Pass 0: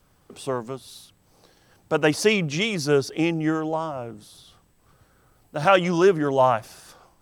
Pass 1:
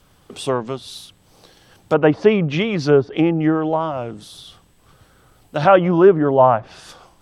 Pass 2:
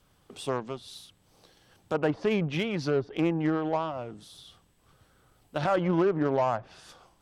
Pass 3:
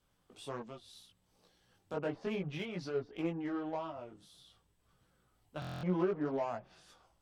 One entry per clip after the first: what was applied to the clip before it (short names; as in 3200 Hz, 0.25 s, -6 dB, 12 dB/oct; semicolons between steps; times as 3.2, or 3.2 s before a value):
treble ducked by the level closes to 1200 Hz, closed at -19 dBFS; bell 3300 Hz +5.5 dB 0.65 oct; gain +6.5 dB
limiter -9 dBFS, peak gain reduction 7.5 dB; added harmonics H 3 -21 dB, 8 -32 dB, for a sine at -9 dBFS; gain -7.5 dB
chorus voices 4, 0.61 Hz, delay 19 ms, depth 3 ms; stuck buffer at 5.6, samples 1024, times 9; gain -7.5 dB